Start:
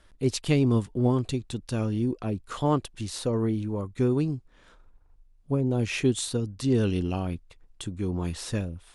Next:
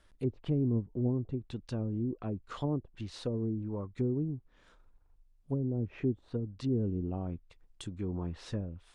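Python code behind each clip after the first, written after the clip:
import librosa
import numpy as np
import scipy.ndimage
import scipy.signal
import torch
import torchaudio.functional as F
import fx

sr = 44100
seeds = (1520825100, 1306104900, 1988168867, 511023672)

y = fx.env_lowpass_down(x, sr, base_hz=420.0, full_db=-22.0)
y = y * 10.0 ** (-6.5 / 20.0)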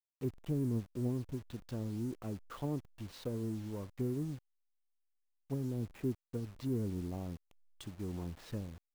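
y = fx.delta_hold(x, sr, step_db=-46.0)
y = y * 10.0 ** (-4.5 / 20.0)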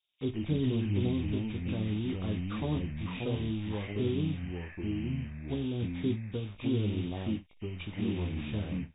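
y = fx.freq_compress(x, sr, knee_hz=2100.0, ratio=4.0)
y = fx.room_early_taps(y, sr, ms=(19, 58), db=(-7.5, -17.5))
y = fx.echo_pitch(y, sr, ms=85, semitones=-3, count=2, db_per_echo=-3.0)
y = y * 10.0 ** (3.5 / 20.0)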